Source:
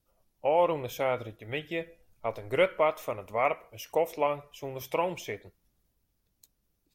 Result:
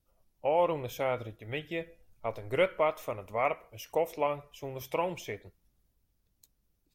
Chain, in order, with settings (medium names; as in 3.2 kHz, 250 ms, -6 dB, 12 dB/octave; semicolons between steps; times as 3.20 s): bass shelf 120 Hz +5.5 dB; trim -2.5 dB